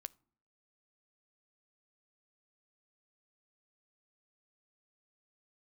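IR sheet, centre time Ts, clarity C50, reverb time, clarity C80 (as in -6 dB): 1 ms, 25.5 dB, 0.60 s, 30.0 dB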